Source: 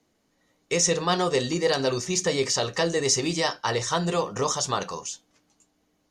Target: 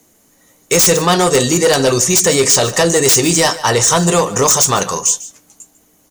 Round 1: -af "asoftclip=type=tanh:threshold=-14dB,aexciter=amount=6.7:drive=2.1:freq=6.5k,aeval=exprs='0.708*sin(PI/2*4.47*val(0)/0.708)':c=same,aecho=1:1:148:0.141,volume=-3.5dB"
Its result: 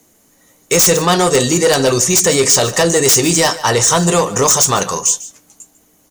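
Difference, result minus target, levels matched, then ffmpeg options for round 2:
soft clip: distortion +19 dB
-af "asoftclip=type=tanh:threshold=-3dB,aexciter=amount=6.7:drive=2.1:freq=6.5k,aeval=exprs='0.708*sin(PI/2*4.47*val(0)/0.708)':c=same,aecho=1:1:148:0.141,volume=-3.5dB"

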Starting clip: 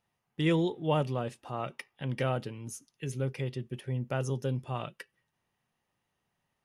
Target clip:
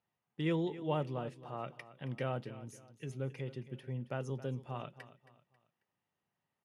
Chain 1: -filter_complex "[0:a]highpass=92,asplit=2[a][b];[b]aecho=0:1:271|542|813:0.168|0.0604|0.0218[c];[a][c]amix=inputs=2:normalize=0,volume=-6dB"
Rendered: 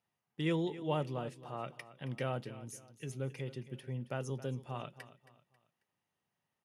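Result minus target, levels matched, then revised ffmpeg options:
8000 Hz band +7.0 dB
-filter_complex "[0:a]highpass=92,highshelf=f=5.3k:g=-10.5,asplit=2[a][b];[b]aecho=0:1:271|542|813:0.168|0.0604|0.0218[c];[a][c]amix=inputs=2:normalize=0,volume=-6dB"

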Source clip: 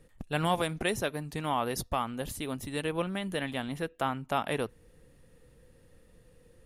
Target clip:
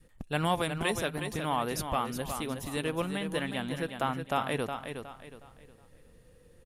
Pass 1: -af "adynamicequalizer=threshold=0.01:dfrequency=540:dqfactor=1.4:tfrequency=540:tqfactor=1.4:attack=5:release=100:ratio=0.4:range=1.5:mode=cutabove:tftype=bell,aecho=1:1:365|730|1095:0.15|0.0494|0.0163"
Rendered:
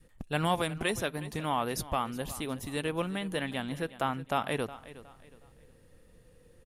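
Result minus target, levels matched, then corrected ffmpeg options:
echo-to-direct -9 dB
-af "adynamicequalizer=threshold=0.01:dfrequency=540:dqfactor=1.4:tfrequency=540:tqfactor=1.4:attack=5:release=100:ratio=0.4:range=1.5:mode=cutabove:tftype=bell,aecho=1:1:365|730|1095|1460:0.422|0.139|0.0459|0.0152"

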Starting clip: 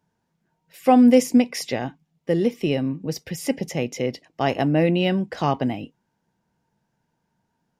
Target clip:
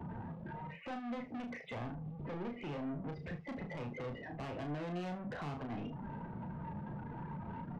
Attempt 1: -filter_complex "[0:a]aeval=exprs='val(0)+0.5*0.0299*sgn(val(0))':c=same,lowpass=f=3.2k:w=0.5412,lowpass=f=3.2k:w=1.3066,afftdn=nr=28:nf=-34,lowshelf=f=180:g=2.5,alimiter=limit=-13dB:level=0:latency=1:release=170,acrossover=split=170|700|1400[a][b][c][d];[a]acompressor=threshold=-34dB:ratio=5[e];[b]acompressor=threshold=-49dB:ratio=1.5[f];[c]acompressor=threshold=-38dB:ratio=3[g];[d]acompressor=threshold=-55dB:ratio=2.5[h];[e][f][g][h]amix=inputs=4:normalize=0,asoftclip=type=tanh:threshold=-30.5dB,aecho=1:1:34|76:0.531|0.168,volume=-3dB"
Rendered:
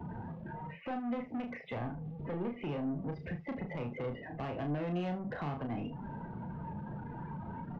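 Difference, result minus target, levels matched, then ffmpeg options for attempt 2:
soft clip: distortion -5 dB
-filter_complex "[0:a]aeval=exprs='val(0)+0.5*0.0299*sgn(val(0))':c=same,lowpass=f=3.2k:w=0.5412,lowpass=f=3.2k:w=1.3066,afftdn=nr=28:nf=-34,lowshelf=f=180:g=2.5,alimiter=limit=-13dB:level=0:latency=1:release=170,acrossover=split=170|700|1400[a][b][c][d];[a]acompressor=threshold=-34dB:ratio=5[e];[b]acompressor=threshold=-49dB:ratio=1.5[f];[c]acompressor=threshold=-38dB:ratio=3[g];[d]acompressor=threshold=-55dB:ratio=2.5[h];[e][f][g][h]amix=inputs=4:normalize=0,asoftclip=type=tanh:threshold=-37dB,aecho=1:1:34|76:0.531|0.168,volume=-3dB"

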